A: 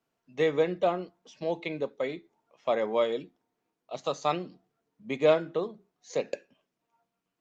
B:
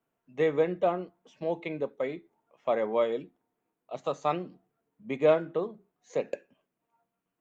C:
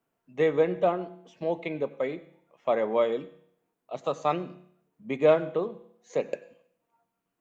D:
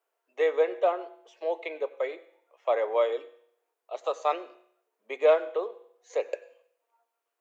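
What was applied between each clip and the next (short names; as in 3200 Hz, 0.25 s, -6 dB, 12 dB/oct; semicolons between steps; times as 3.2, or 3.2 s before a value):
bell 4900 Hz -12.5 dB 1.1 oct
reverb RT60 0.65 s, pre-delay 84 ms, DRR 17.5 dB; gain +2 dB
steep high-pass 410 Hz 36 dB/oct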